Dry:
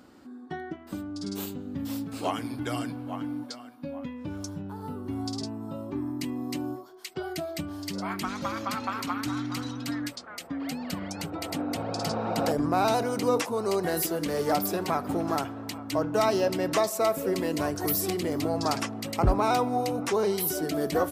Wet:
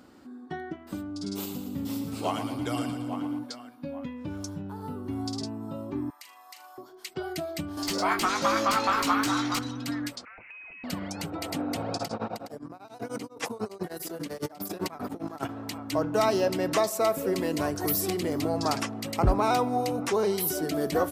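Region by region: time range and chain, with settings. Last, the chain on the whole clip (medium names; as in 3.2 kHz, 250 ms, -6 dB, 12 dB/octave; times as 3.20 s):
1.10–3.39 s: peaking EQ 1.7 kHz -7.5 dB 0.22 oct + two-band feedback delay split 470 Hz, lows 290 ms, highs 115 ms, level -8 dB
6.10–6.78 s: high-pass 920 Hz 24 dB/octave + compression 5:1, threshold -43 dBFS + flutter echo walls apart 6.7 m, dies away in 0.32 s
7.77–9.59 s: tone controls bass -2 dB, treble +14 dB + overdrive pedal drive 18 dB, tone 1.4 kHz, clips at -11 dBFS + doubling 18 ms -5.5 dB
10.25–10.84 s: frequency inversion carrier 2.8 kHz + compression, threshold -44 dBFS
11.94–15.49 s: compressor with a negative ratio -32 dBFS, ratio -0.5 + high-pass 94 Hz + tremolo of two beating tones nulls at 10 Hz
whole clip: none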